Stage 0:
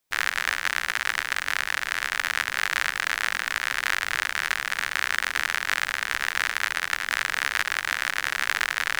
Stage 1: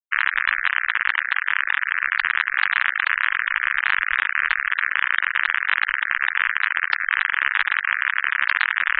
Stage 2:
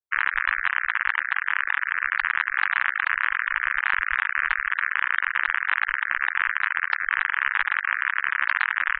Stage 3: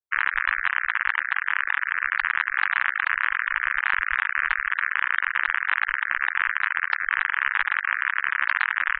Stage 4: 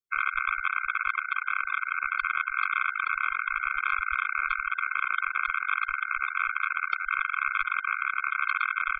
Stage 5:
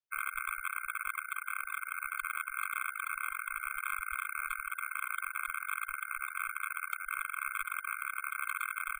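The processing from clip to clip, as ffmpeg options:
ffmpeg -i in.wav -filter_complex "[0:a]afftfilt=real='re*gte(hypot(re,im),0.0562)':imag='im*gte(hypot(re,im),0.0562)':win_size=1024:overlap=0.75,asplit=2[link_01][link_02];[link_02]alimiter=limit=-14.5dB:level=0:latency=1:release=273,volume=2.5dB[link_03];[link_01][link_03]amix=inputs=2:normalize=0,volume=1.5dB" out.wav
ffmpeg -i in.wav -af "firequalizer=gain_entry='entry(110,0);entry(230,-16);entry(330,-3);entry(610,-7);entry(890,-6);entry(1800,-9);entry(3500,-16)':delay=0.05:min_phase=1,volume=6dB" out.wav
ffmpeg -i in.wav -af anull out.wav
ffmpeg -i in.wav -af "afftfilt=real='re*eq(mod(floor(b*sr/1024/520),2),0)':imag='im*eq(mod(floor(b*sr/1024/520),2),0)':win_size=1024:overlap=0.75" out.wav
ffmpeg -i in.wav -af "acrusher=samples=4:mix=1:aa=0.000001,volume=-9dB" out.wav

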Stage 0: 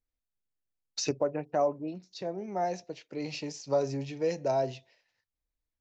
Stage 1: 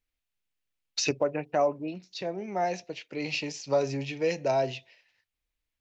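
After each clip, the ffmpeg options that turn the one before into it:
ffmpeg -i in.wav -af "equalizer=frequency=2600:width=1.1:gain=9.5,volume=1.5dB" out.wav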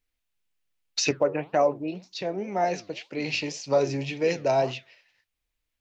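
ffmpeg -i in.wav -af "flanger=delay=2.7:depth=8.2:regen=87:speed=1.9:shape=triangular,volume=7.5dB" out.wav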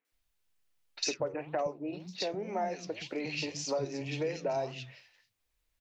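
ffmpeg -i in.wav -filter_complex "[0:a]acompressor=threshold=-35dB:ratio=4,acrossover=split=220|2600[link_01][link_02][link_03];[link_03]adelay=50[link_04];[link_01]adelay=120[link_05];[link_05][link_02][link_04]amix=inputs=3:normalize=0,volume=3dB" out.wav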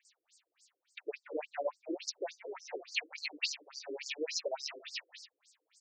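ffmpeg -i in.wav -af "areverse,acompressor=threshold=-42dB:ratio=12,areverse,crystalizer=i=6:c=0,afftfilt=real='re*between(b*sr/1024,380*pow(6400/380,0.5+0.5*sin(2*PI*3.5*pts/sr))/1.41,380*pow(6400/380,0.5+0.5*sin(2*PI*3.5*pts/sr))*1.41)':imag='im*between(b*sr/1024,380*pow(6400/380,0.5+0.5*sin(2*PI*3.5*pts/sr))/1.41,380*pow(6400/380,0.5+0.5*sin(2*PI*3.5*pts/sr))*1.41)':win_size=1024:overlap=0.75,volume=11.5dB" out.wav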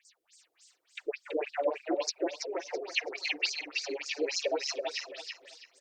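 ffmpeg -i in.wav -filter_complex "[0:a]asplit=2[link_01][link_02];[link_02]aecho=0:1:330|660|990|1320:0.668|0.167|0.0418|0.0104[link_03];[link_01][link_03]amix=inputs=2:normalize=0,volume=5.5dB" -ar 48000 -c:a libopus -b:a 48k out.opus

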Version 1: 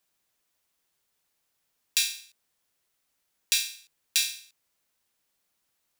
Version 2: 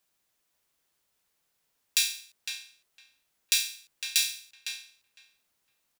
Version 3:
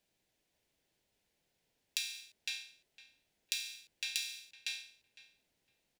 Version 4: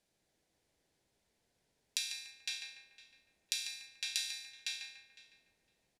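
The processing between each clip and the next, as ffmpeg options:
ffmpeg -i in.wav -filter_complex "[0:a]asplit=2[link_01][link_02];[link_02]adelay=507,lowpass=frequency=2300:poles=1,volume=-4.5dB,asplit=2[link_03][link_04];[link_04]adelay=507,lowpass=frequency=2300:poles=1,volume=0.16,asplit=2[link_05][link_06];[link_06]adelay=507,lowpass=frequency=2300:poles=1,volume=0.16[link_07];[link_01][link_03][link_05][link_07]amix=inputs=4:normalize=0" out.wav
ffmpeg -i in.wav -af "lowpass=frequency=2100:poles=1,equalizer=frequency=1200:width=1.8:gain=-14.5,acompressor=threshold=-38dB:ratio=12,volume=5dB" out.wav
ffmpeg -i in.wav -filter_complex "[0:a]lowpass=frequency=12000:width=0.5412,lowpass=frequency=12000:width=1.3066,equalizer=frequency=2800:width=2.6:gain=-5,asplit=2[link_01][link_02];[link_02]adelay=145,lowpass=frequency=2000:poles=1,volume=-3.5dB,asplit=2[link_03][link_04];[link_04]adelay=145,lowpass=frequency=2000:poles=1,volume=0.51,asplit=2[link_05][link_06];[link_06]adelay=145,lowpass=frequency=2000:poles=1,volume=0.51,asplit=2[link_07][link_08];[link_08]adelay=145,lowpass=frequency=2000:poles=1,volume=0.51,asplit=2[link_09][link_10];[link_10]adelay=145,lowpass=frequency=2000:poles=1,volume=0.51,asplit=2[link_11][link_12];[link_12]adelay=145,lowpass=frequency=2000:poles=1,volume=0.51,asplit=2[link_13][link_14];[link_14]adelay=145,lowpass=frequency=2000:poles=1,volume=0.51[link_15];[link_01][link_03][link_05][link_07][link_09][link_11][link_13][link_15]amix=inputs=8:normalize=0,volume=1.5dB" out.wav

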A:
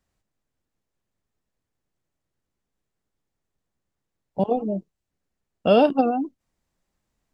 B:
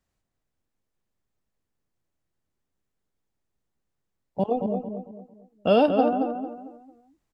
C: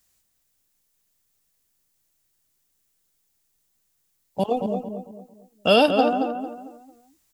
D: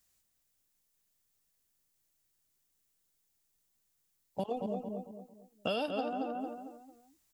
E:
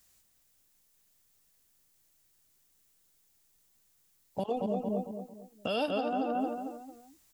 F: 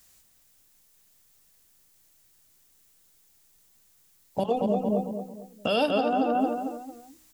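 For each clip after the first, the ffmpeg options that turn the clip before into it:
ffmpeg -i in.wav -filter_complex "[0:a]asplit=2[link_01][link_02];[link_02]adelay=225,lowpass=frequency=2000:poles=1,volume=-6dB,asplit=2[link_03][link_04];[link_04]adelay=225,lowpass=frequency=2000:poles=1,volume=0.36,asplit=2[link_05][link_06];[link_06]adelay=225,lowpass=frequency=2000:poles=1,volume=0.36,asplit=2[link_07][link_08];[link_08]adelay=225,lowpass=frequency=2000:poles=1,volume=0.36[link_09];[link_01][link_03][link_05][link_07][link_09]amix=inputs=5:normalize=0,volume=-2.5dB" out.wav
ffmpeg -i in.wav -af "crystalizer=i=8:c=0" out.wav
ffmpeg -i in.wav -af "acompressor=threshold=-25dB:ratio=6,volume=-6.5dB" out.wav
ffmpeg -i in.wav -af "alimiter=level_in=6dB:limit=-24dB:level=0:latency=1:release=181,volume=-6dB,volume=8dB" out.wav
ffmpeg -i in.wav -af "bandreject=frequency=62.3:width_type=h:width=4,bandreject=frequency=124.6:width_type=h:width=4,bandreject=frequency=186.9:width_type=h:width=4,bandreject=frequency=249.2:width_type=h:width=4,bandreject=frequency=311.5:width_type=h:width=4,bandreject=frequency=373.8:width_type=h:width=4,bandreject=frequency=436.1:width_type=h:width=4,bandreject=frequency=498.4:width_type=h:width=4,bandreject=frequency=560.7:width_type=h:width=4,volume=7dB" out.wav

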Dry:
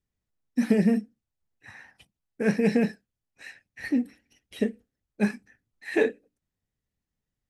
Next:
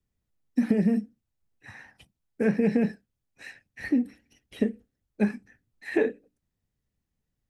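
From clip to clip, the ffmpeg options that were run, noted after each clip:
ffmpeg -i in.wav -filter_complex "[0:a]lowshelf=frequency=470:gain=5,acrossover=split=120|1200|2800[link_01][link_02][link_03][link_04];[link_04]alimiter=level_in=18.5dB:limit=-24dB:level=0:latency=1:release=307,volume=-18.5dB[link_05];[link_01][link_02][link_03][link_05]amix=inputs=4:normalize=0,acompressor=threshold=-19dB:ratio=6" out.wav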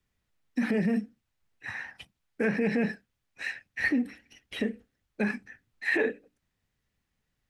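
ffmpeg -i in.wav -af "alimiter=limit=-21dB:level=0:latency=1:release=55,equalizer=frequency=2000:width=0.39:gain=10" out.wav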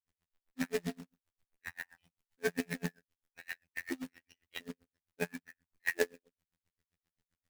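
ffmpeg -i in.wav -af "afftfilt=real='hypot(re,im)*cos(PI*b)':imag='0':win_size=2048:overlap=0.75,acrusher=bits=2:mode=log:mix=0:aa=0.000001,aeval=exprs='val(0)*pow(10,-37*(0.5-0.5*cos(2*PI*7.6*n/s))/20)':channel_layout=same,volume=1dB" out.wav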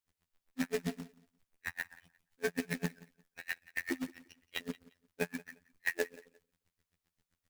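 ffmpeg -i in.wav -af "acompressor=threshold=-34dB:ratio=6,aecho=1:1:175|350:0.0891|0.0214,volume=4.5dB" out.wav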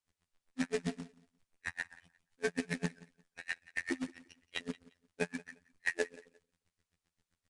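ffmpeg -i in.wav -af "aresample=22050,aresample=44100" out.wav

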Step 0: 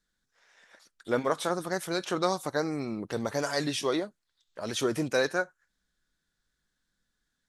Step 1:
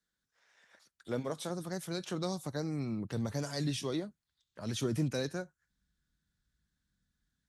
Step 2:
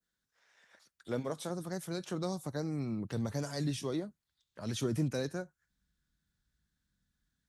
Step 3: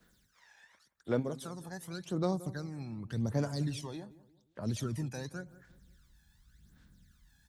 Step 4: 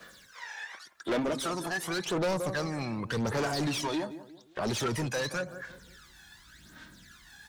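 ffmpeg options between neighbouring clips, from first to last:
ffmpeg -i in.wav -filter_complex "[0:a]highpass=54,asubboost=boost=5.5:cutoff=200,acrossover=split=130|720|2700[link_01][link_02][link_03][link_04];[link_03]acompressor=threshold=-43dB:ratio=6[link_05];[link_01][link_02][link_05][link_04]amix=inputs=4:normalize=0,volume=-6dB" out.wav
ffmpeg -i in.wav -af "adynamicequalizer=threshold=0.002:dfrequency=3400:dqfactor=0.72:tfrequency=3400:tqfactor=0.72:attack=5:release=100:ratio=0.375:range=3:mode=cutabove:tftype=bell" out.wav
ffmpeg -i in.wav -filter_complex "[0:a]areverse,acompressor=mode=upward:threshold=-49dB:ratio=2.5,areverse,aphaser=in_gain=1:out_gain=1:delay=1.2:decay=0.68:speed=0.88:type=sinusoidal,asplit=2[link_01][link_02];[link_02]adelay=176,lowpass=frequency=1100:poles=1,volume=-16dB,asplit=2[link_03][link_04];[link_04]adelay=176,lowpass=frequency=1100:poles=1,volume=0.4,asplit=2[link_05][link_06];[link_06]adelay=176,lowpass=frequency=1100:poles=1,volume=0.4,asplit=2[link_07][link_08];[link_08]adelay=176,lowpass=frequency=1100:poles=1,volume=0.4[link_09];[link_01][link_03][link_05][link_07][link_09]amix=inputs=5:normalize=0,volume=-5dB" out.wav
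ffmpeg -i in.wav -filter_complex "[0:a]flanger=delay=1.7:depth=1.5:regen=47:speed=0.37:shape=sinusoidal,asplit=2[link_01][link_02];[link_02]highpass=frequency=720:poles=1,volume=31dB,asoftclip=type=tanh:threshold=-22.5dB[link_03];[link_01][link_03]amix=inputs=2:normalize=0,lowpass=frequency=3700:poles=1,volume=-6dB,volume=1dB" out.wav

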